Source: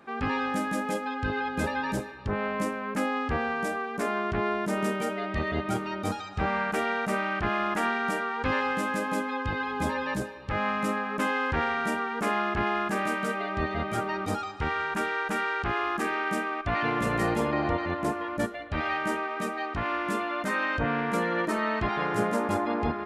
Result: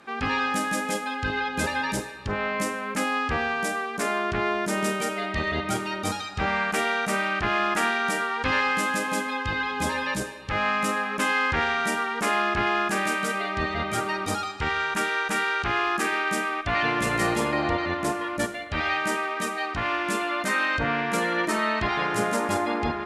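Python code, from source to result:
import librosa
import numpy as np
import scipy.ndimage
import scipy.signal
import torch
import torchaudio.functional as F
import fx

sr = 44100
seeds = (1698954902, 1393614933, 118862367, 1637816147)

y = scipy.signal.sosfilt(scipy.signal.butter(2, 12000.0, 'lowpass', fs=sr, output='sos'), x)
y = fx.high_shelf(y, sr, hz=2000.0, db=11.0)
y = fx.rev_schroeder(y, sr, rt60_s=0.52, comb_ms=33, drr_db=12.0)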